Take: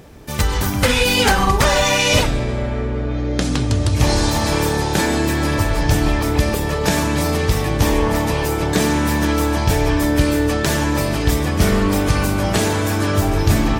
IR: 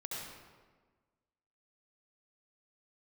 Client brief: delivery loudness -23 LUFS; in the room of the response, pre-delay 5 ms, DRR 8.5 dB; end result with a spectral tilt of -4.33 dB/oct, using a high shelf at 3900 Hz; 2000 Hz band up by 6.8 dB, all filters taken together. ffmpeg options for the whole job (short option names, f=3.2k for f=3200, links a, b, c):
-filter_complex "[0:a]equalizer=f=2k:t=o:g=7.5,highshelf=f=3.9k:g=4,asplit=2[a][b];[1:a]atrim=start_sample=2205,adelay=5[c];[b][c]afir=irnorm=-1:irlink=0,volume=-9dB[d];[a][d]amix=inputs=2:normalize=0,volume=-8dB"